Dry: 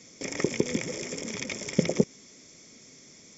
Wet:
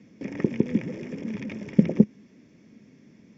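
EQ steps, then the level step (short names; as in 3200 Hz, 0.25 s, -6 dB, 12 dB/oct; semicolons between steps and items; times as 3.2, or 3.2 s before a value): speaker cabinet 110–6100 Hz, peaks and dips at 210 Hz +8 dB, 300 Hz +4 dB, 930 Hz +4 dB, 1700 Hz +10 dB, 2700 Hz +10 dB; tilt -4.5 dB/oct; -8.0 dB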